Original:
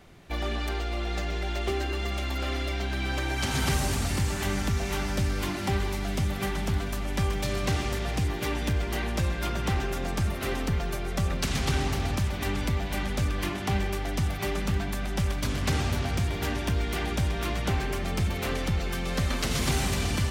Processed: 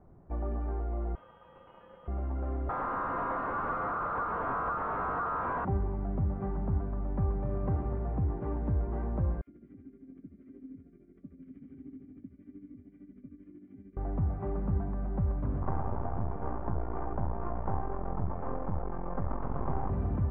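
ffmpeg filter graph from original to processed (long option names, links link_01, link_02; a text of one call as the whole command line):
ffmpeg -i in.wav -filter_complex "[0:a]asettb=1/sr,asplit=3[link_01][link_02][link_03];[link_01]atrim=end=1.154[link_04];[link_02]atrim=start=1.15:end=2.08,asetpts=PTS-STARTPTS,afade=type=in:duration=0.004:curve=qsin,afade=type=out:start_time=0.926:duration=0.004:curve=qsin,lowpass=frequency=2800:width_type=q:width=0.5098,lowpass=frequency=2800:width_type=q:width=0.6013,lowpass=frequency=2800:width_type=q:width=0.9,lowpass=frequency=2800:width_type=q:width=2.563,afreqshift=-3300,asoftclip=type=hard:threshold=-31dB[link_05];[link_03]atrim=start=2.076[link_06];[link_04][link_05]acrossfade=duration=0.004:curve1=hsin:curve2=qsin[link_07];[link_07][link_06]acrossfade=duration=0.004:curve1=qsin:curve2=hsin,asettb=1/sr,asplit=3[link_08][link_09][link_10];[link_08]atrim=end=2.694[link_11];[link_09]atrim=start=2.69:end=5.65,asetpts=PTS-STARTPTS,afade=type=in:duration=0.004:curve=qsin,afade=type=out:start_time=2.956:duration=0.004:curve=qsin,aecho=1:1:6.7:0.52,atrim=end_sample=130536,aeval=exprs='val(0)*sin(2*PI*1300*n/s)':channel_layout=same,asplit=2[link_12][link_13];[link_13]highpass=frequency=720:poles=1,volume=31dB,asoftclip=type=tanh:threshold=-13.5dB[link_14];[link_12][link_14]amix=inputs=2:normalize=0,lowpass=frequency=4500:poles=1,volume=-6dB[link_15];[link_10]atrim=start=5.646[link_16];[link_11][link_15]acrossfade=duration=0.004:curve1=hsin:curve2=qsin[link_17];[link_17][link_16]acrossfade=duration=0.004:curve1=qsin:curve2=hsin,asettb=1/sr,asplit=3[link_18][link_19][link_20];[link_18]atrim=end=9.414[link_21];[link_19]atrim=start=9.41:end=13.97,asetpts=PTS-STARTPTS,afade=type=in:duration=0.004:curve=qsin,afade=type=out:start_time=4.556:duration=0.004:curve=qsin,acrossover=split=800[link_22][link_23];[link_22]adelay=60[link_24];[link_24][link_23]amix=inputs=2:normalize=0,atrim=end_sample=201096,tremolo=f=13:d=0.69,asplit=3[link_25][link_26][link_27];[link_25]bandpass=frequency=270:width_type=q:width=8,volume=0dB[link_28];[link_26]bandpass=frequency=2290:width_type=q:width=8,volume=-6dB[link_29];[link_27]bandpass=frequency=3010:width_type=q:width=8,volume=-9dB[link_30];[link_28][link_29][link_30]amix=inputs=3:normalize=0[link_31];[link_20]atrim=start=13.966[link_32];[link_21][link_31]acrossfade=duration=0.004:curve1=hsin:curve2=qsin[link_33];[link_33][link_32]acrossfade=duration=0.004:curve1=qsin:curve2=hsin,asettb=1/sr,asplit=3[link_34][link_35][link_36];[link_34]atrim=end=15.624[link_37];[link_35]atrim=start=15.62:end=19.9,asetpts=PTS-STARTPTS,afade=type=in:duration=0.004:curve=qsin,afade=type=out:start_time=4.276:duration=0.004:curve=qsin,equalizer=frequency=960:width=1:gain=12,aeval=exprs='max(val(0),0)':channel_layout=same[link_38];[link_36]atrim=start=19.896[link_39];[link_37][link_38]acrossfade=duration=0.004:curve1=hsin:curve2=qsin[link_40];[link_40][link_39]acrossfade=duration=0.004:curve1=qsin:curve2=hsin,lowpass=frequency=1100:width=0.5412,lowpass=frequency=1100:width=1.3066,lowshelf=frequency=230:gain=4.5,volume=-6dB" out.wav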